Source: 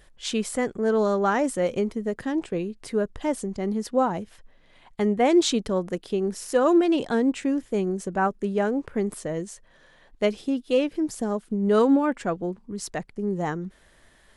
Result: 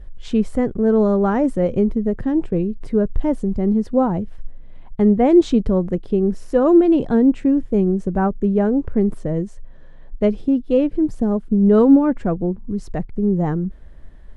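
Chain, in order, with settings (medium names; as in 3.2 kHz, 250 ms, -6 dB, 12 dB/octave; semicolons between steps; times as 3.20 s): tilt EQ -4.5 dB/octave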